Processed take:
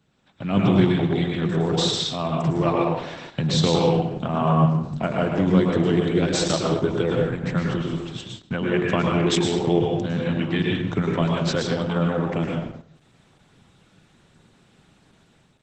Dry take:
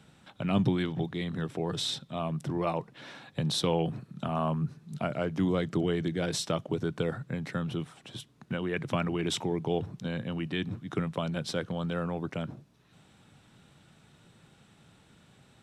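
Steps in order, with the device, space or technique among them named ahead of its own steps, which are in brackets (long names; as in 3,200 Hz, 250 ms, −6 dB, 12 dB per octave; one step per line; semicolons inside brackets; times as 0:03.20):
speakerphone in a meeting room (convolution reverb RT60 0.85 s, pre-delay 101 ms, DRR −1 dB; automatic gain control gain up to 8.5 dB; noise gate −35 dBFS, range −7 dB; level −1.5 dB; Opus 12 kbit/s 48,000 Hz)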